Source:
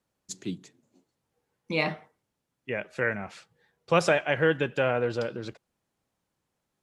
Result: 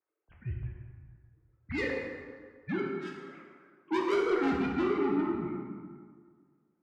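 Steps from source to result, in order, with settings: sine-wave speech; mistuned SSB -200 Hz 250–2600 Hz; soft clip -28.5 dBFS, distortion -6 dB; 2.82–3.29 differentiator; plate-style reverb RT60 1.8 s, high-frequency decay 0.6×, DRR -2 dB

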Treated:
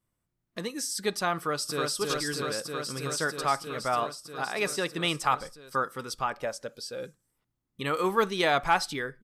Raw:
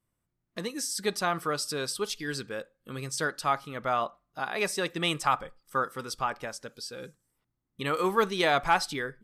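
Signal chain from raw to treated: 1.37–1.91 echo throw 0.32 s, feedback 85%, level -2 dB; 6.37–7.05 bell 580 Hz +9 dB 0.49 oct

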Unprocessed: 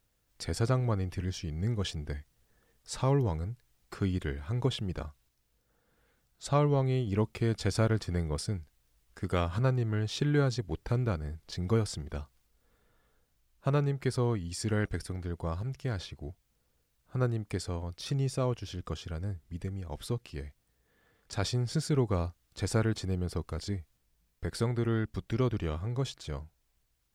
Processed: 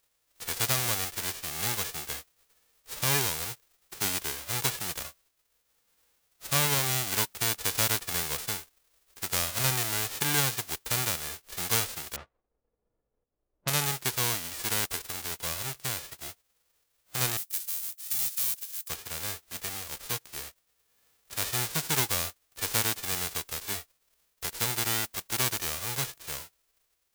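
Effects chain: spectral whitening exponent 0.1; 12.16–13.85 low-pass opened by the level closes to 450 Hz, open at -27.5 dBFS; 17.37–18.89 pre-emphasis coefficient 0.9

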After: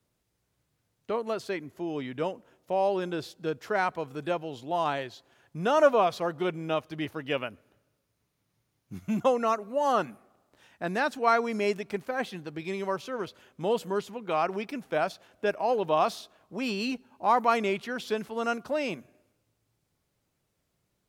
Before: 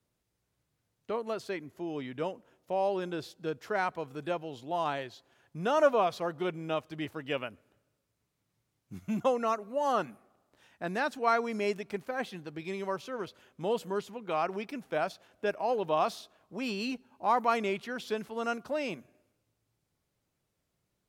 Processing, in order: 6.66–9.03 notch 7700 Hz, Q 8.9; gain +3.5 dB

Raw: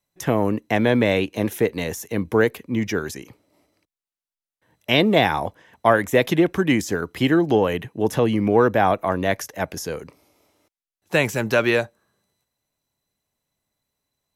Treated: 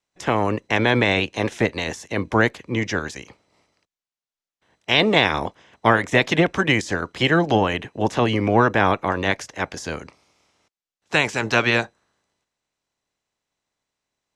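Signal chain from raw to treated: spectral limiter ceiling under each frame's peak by 14 dB; LPF 7600 Hz 24 dB/oct

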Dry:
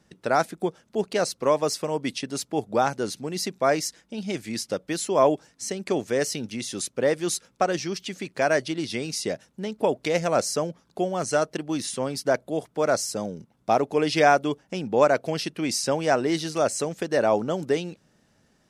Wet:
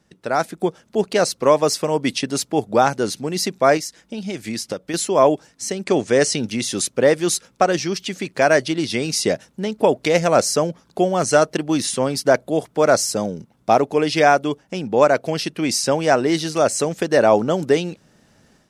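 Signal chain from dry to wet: 3.77–4.94 compressor 6:1, threshold -33 dBFS, peak gain reduction 10.5 dB; 5.84–6.4 steep low-pass 10000 Hz 48 dB/oct; AGC gain up to 10 dB

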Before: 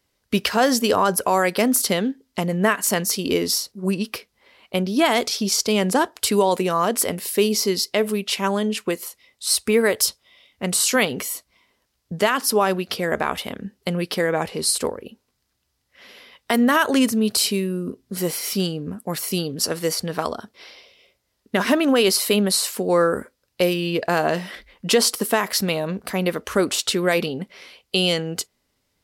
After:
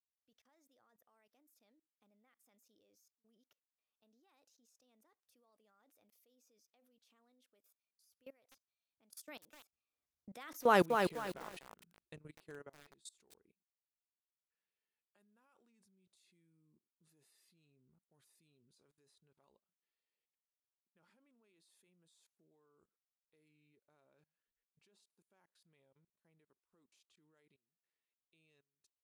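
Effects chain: Doppler pass-by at 10.78, 52 m/s, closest 3.7 m; level quantiser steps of 24 dB; lo-fi delay 0.249 s, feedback 35%, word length 8-bit, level -4.5 dB; gain -2 dB

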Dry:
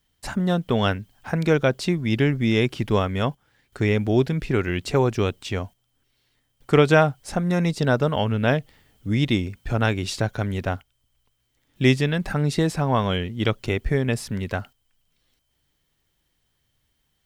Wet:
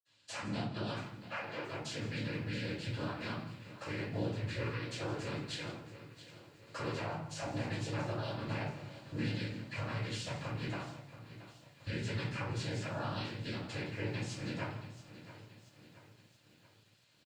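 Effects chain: de-esser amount 70%; tilt shelf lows -7 dB, about 910 Hz; limiter -13 dBFS, peak gain reduction 7.5 dB; compressor 10:1, threshold -38 dBFS, peak gain reduction 19.5 dB; noise vocoder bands 8; 0.93–1.62 BPF 470–4400 Hz; echo 0.162 s -15.5 dB; reverb RT60 0.60 s, pre-delay 46 ms; lo-fi delay 0.677 s, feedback 55%, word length 11-bit, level -14.5 dB; gain +4.5 dB

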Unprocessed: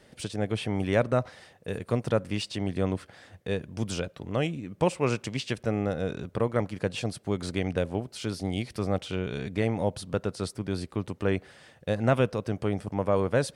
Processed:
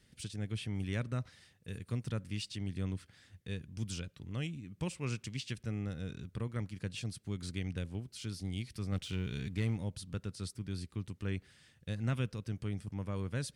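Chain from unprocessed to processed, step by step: 8.92–9.77 sample leveller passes 1; passive tone stack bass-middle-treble 6-0-2; gain +8.5 dB

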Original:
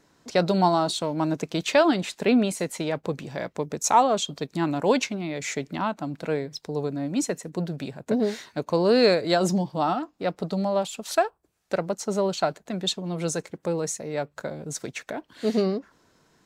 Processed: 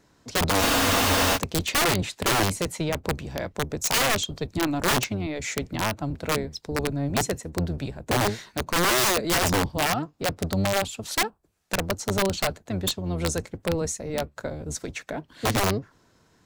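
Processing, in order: octaver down 1 oct, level -1 dB; wrapped overs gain 16.5 dB; spectral freeze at 0.63, 0.73 s

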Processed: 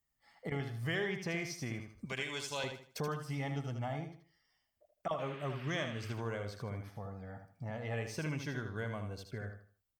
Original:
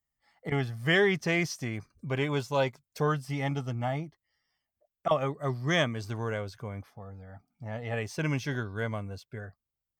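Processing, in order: 2.05–2.64 graphic EQ 125/250/500/1000/2000/4000/8000 Hz -12/-7/-5/-6/+4/+4/+10 dB; compressor 2.5:1, threshold -42 dBFS, peak gain reduction 14.5 dB; 5.18–6.11 band noise 1200–3100 Hz -56 dBFS; feedback echo 78 ms, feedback 30%, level -7 dB; gain +1.5 dB

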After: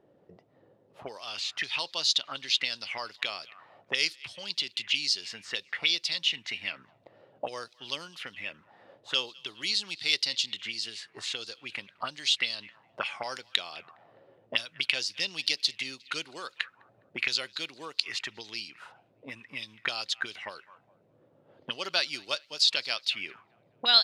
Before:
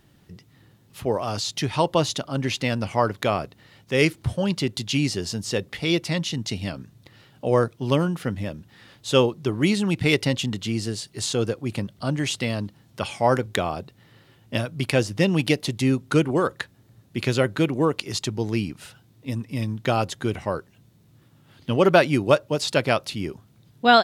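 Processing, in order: narrowing echo 0.206 s, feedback 57%, band-pass 2400 Hz, level -23.5 dB; auto-wah 500–4500 Hz, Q 3.7, up, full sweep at -21 dBFS; gain +8.5 dB

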